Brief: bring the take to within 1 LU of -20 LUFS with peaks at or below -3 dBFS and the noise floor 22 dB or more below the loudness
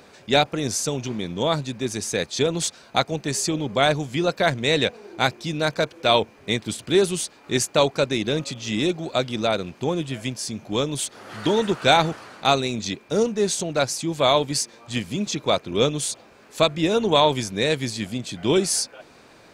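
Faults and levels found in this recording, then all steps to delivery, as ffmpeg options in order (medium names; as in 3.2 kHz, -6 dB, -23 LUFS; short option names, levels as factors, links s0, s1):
loudness -23.0 LUFS; peak level -2.5 dBFS; loudness target -20.0 LUFS
-> -af "volume=1.41,alimiter=limit=0.708:level=0:latency=1"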